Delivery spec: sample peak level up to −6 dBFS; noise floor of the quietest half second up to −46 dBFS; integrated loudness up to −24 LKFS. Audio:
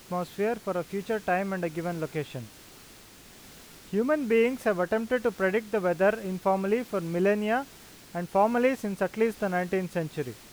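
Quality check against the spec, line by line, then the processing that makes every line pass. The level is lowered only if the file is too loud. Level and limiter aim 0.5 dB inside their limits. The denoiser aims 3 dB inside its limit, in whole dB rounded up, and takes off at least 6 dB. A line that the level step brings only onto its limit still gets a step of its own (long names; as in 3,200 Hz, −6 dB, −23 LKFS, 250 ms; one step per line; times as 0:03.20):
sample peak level −11.5 dBFS: in spec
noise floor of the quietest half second −51 dBFS: in spec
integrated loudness −28.0 LKFS: in spec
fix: no processing needed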